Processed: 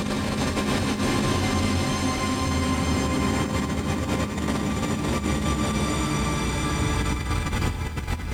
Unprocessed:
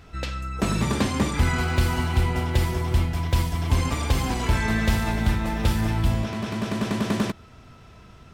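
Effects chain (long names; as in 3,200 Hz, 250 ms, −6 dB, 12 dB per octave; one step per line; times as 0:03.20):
extreme stretch with random phases 21×, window 0.25 s, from 0:01.01
compressor whose output falls as the input rises −24 dBFS, ratio −0.5
feedback echo at a low word length 109 ms, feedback 80%, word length 8 bits, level −14.5 dB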